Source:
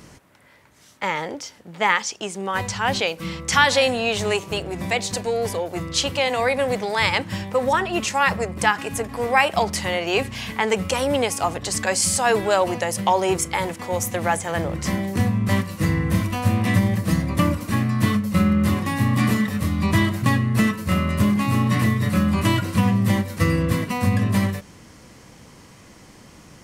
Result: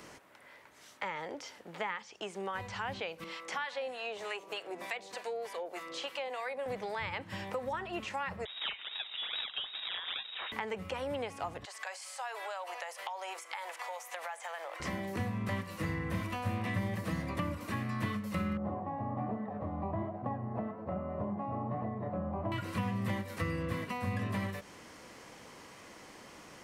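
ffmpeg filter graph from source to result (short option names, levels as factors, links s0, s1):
-filter_complex "[0:a]asettb=1/sr,asplit=3[s0][s1][s2];[s0]atrim=end=3.244[s3];[s1]atrim=start=3.24:end=6.66,asetpts=PTS-STARTPTS,afade=t=in:d=0.004:c=qsin,afade=t=out:st=3.416:d=0.004:c=qsin,highpass=370,acrossover=split=910[s4][s5];[s4]aeval=exprs='val(0)*(1-0.7/2+0.7/2*cos(2*PI*3.3*n/s))':c=same[s6];[s5]aeval=exprs='val(0)*(1-0.7/2-0.7/2*cos(2*PI*3.3*n/s))':c=same[s7];[s6][s7]amix=inputs=2:normalize=0[s8];[s2]atrim=start=6.656[s9];[s3][s8]acrossfade=d=0.004:c1=hsin:c2=qsin[s10];[s10][s9]acrossfade=d=0.004:c1=qsin:c2=hsin,asettb=1/sr,asplit=3[s11][s12][s13];[s11]atrim=end=8.454[s14];[s12]atrim=start=8.45:end=10.52,asetpts=PTS-STARTPTS,afade=t=in:d=0.004:c=qsin,afade=t=out:st=2.066:d=0.004:c=qsin,acrusher=samples=29:mix=1:aa=0.000001:lfo=1:lforange=46.4:lforate=2.4,lowpass=f=3300:t=q:w=0.5098,lowpass=f=3300:t=q:w=0.6013,lowpass=f=3300:t=q:w=0.9,lowpass=f=3300:t=q:w=2.563,afreqshift=-3900[s15];[s13]atrim=start=10.516[s16];[s14][s15]acrossfade=d=0.004:c1=hsin:c2=qsin[s17];[s17][s16]acrossfade=d=0.004:c1=qsin:c2=hsin,asettb=1/sr,asplit=3[s18][s19][s20];[s18]atrim=end=11.654[s21];[s19]atrim=start=11.65:end=14.8,asetpts=PTS-STARTPTS,afade=t=in:d=0.004:c=qsin,afade=t=out:st=3.146:d=0.004:c=qsin,highpass=f=650:w=0.5412,highpass=f=650:w=1.3066,acompressor=threshold=0.0224:ratio=3:attack=3.2:release=140:knee=1:detection=peak[s22];[s20]atrim=start=14.796[s23];[s21][s22]acrossfade=d=0.004:c1=hsin:c2=qsin[s24];[s24][s23]acrossfade=d=0.004:c1=qsin:c2=hsin,asettb=1/sr,asplit=3[s25][s26][s27];[s25]atrim=end=18.574[s28];[s26]atrim=start=18.57:end=22.52,asetpts=PTS-STARTPTS,afade=t=in:d=0.004:c=qsin,afade=t=out:st=3.946:d=0.004:c=qsin,flanger=delay=3.9:depth=9.1:regen=70:speed=1.2:shape=sinusoidal,lowpass=f=730:t=q:w=4.7[s29];[s27]atrim=start=22.516[s30];[s28][s29]acrossfade=d=0.004:c1=hsin:c2=qsin[s31];[s31][s30]acrossfade=d=0.004:c1=qsin:c2=hsin,acrossover=split=3500[s32][s33];[s33]acompressor=threshold=0.0112:ratio=4:attack=1:release=60[s34];[s32][s34]amix=inputs=2:normalize=0,bass=f=250:g=-14,treble=f=4000:g=-5,acrossover=split=160[s35][s36];[s36]acompressor=threshold=0.0158:ratio=4[s37];[s35][s37]amix=inputs=2:normalize=0,volume=0.841"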